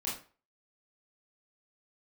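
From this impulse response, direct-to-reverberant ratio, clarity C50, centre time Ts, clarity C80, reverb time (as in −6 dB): −6.5 dB, 5.0 dB, 39 ms, 11.0 dB, 0.40 s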